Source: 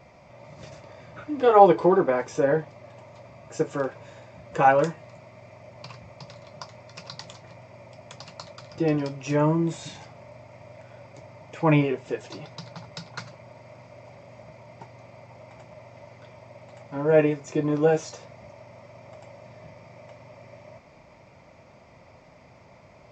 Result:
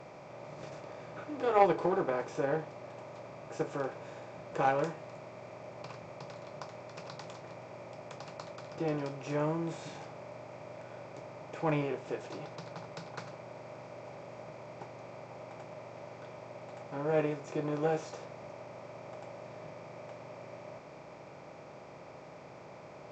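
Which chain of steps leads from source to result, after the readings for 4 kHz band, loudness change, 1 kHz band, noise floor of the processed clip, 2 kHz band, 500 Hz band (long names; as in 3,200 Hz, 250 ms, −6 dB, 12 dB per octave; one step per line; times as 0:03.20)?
−8.5 dB, −15.0 dB, −9.5 dB, −50 dBFS, −8.5 dB, −10.0 dB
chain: compressor on every frequency bin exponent 0.6
harmonic generator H 3 −16 dB, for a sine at −0.5 dBFS
level −9 dB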